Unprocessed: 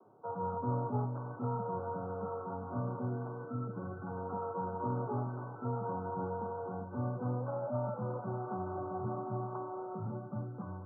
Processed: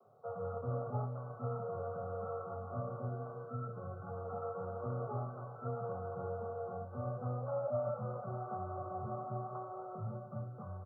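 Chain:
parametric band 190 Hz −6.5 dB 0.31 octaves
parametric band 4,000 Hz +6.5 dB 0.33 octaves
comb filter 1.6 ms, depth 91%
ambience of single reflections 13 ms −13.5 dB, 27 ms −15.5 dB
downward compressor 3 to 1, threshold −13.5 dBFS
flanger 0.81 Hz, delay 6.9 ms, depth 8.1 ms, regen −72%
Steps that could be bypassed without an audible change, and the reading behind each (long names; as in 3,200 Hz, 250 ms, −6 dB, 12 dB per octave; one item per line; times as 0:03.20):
parametric band 4,000 Hz: nothing at its input above 1,400 Hz
downward compressor, threshold −13.5 dBFS: peak of its input −22.0 dBFS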